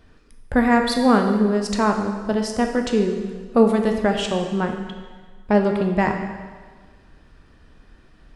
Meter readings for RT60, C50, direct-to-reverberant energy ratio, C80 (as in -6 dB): 1.5 s, 5.5 dB, 3.5 dB, 7.0 dB